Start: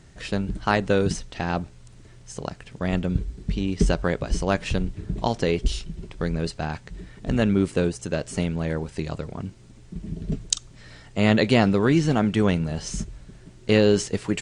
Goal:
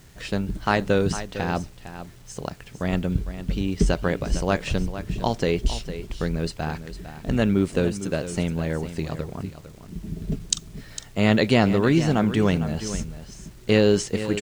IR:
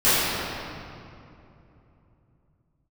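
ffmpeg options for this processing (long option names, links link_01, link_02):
-filter_complex "[0:a]acrusher=bits=8:mix=0:aa=0.000001,asplit=2[link_01][link_02];[link_02]aecho=0:1:455:0.251[link_03];[link_01][link_03]amix=inputs=2:normalize=0"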